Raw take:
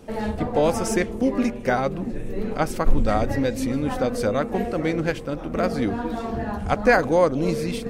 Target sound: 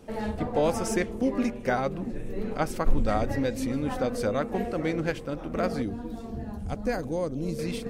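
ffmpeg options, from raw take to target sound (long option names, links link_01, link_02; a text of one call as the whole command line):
ffmpeg -i in.wav -filter_complex "[0:a]asettb=1/sr,asplit=3[link_01][link_02][link_03];[link_01]atrim=end=5.824[link_04];[link_02]atrim=start=5.82:end=7.59,asetpts=PTS-STARTPTS,afade=type=in:duration=0.004:curve=qsin,afade=type=out:start_time=1.766:duration=0.004:curve=qsin,equalizer=frequency=1400:width=0.38:gain=-13.5[link_05];[link_03]atrim=start=7.586[link_06];[link_04][link_05]acrossfade=duration=0.004:curve1=hsin:curve2=qsin[link_07];[link_07][link_06]acrossfade=duration=0.004:curve1=qsin:curve2=hsin,volume=-4.5dB" out.wav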